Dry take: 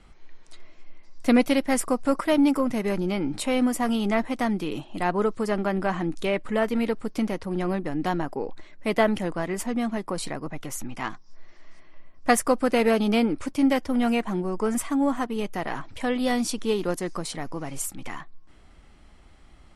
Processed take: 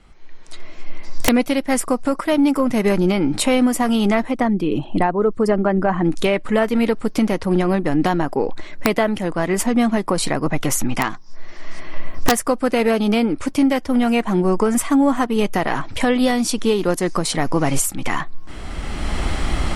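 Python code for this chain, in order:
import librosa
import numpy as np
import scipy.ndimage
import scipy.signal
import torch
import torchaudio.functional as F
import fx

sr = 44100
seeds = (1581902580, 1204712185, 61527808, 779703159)

y = fx.envelope_sharpen(x, sr, power=1.5, at=(4.3, 6.04), fade=0.02)
y = fx.recorder_agc(y, sr, target_db=-10.5, rise_db_per_s=17.0, max_gain_db=30)
y = (np.mod(10.0 ** (7.5 / 20.0) * y + 1.0, 2.0) - 1.0) / 10.0 ** (7.5 / 20.0)
y = y * librosa.db_to_amplitude(2.0)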